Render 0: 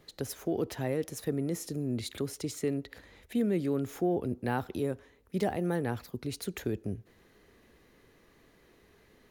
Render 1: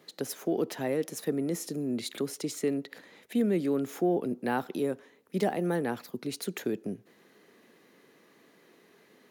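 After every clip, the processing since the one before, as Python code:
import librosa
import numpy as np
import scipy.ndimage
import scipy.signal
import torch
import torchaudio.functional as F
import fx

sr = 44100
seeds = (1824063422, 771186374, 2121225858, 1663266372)

y = scipy.signal.sosfilt(scipy.signal.butter(4, 170.0, 'highpass', fs=sr, output='sos'), x)
y = y * librosa.db_to_amplitude(2.5)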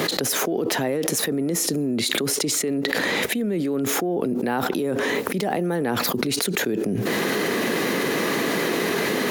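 y = fx.env_flatten(x, sr, amount_pct=100)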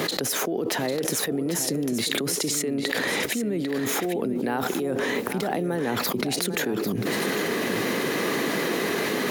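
y = x + 10.0 ** (-9.5 / 20.0) * np.pad(x, (int(797 * sr / 1000.0), 0))[:len(x)]
y = y * librosa.db_to_amplitude(-3.0)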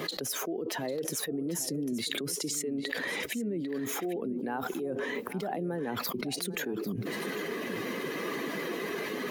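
y = fx.bin_expand(x, sr, power=1.5)
y = y * librosa.db_to_amplitude(-4.5)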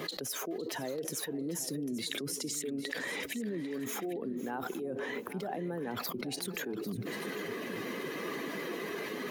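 y = x + 10.0 ** (-16.0 / 20.0) * np.pad(x, (int(508 * sr / 1000.0), 0))[:len(x)]
y = y * librosa.db_to_amplitude(-3.5)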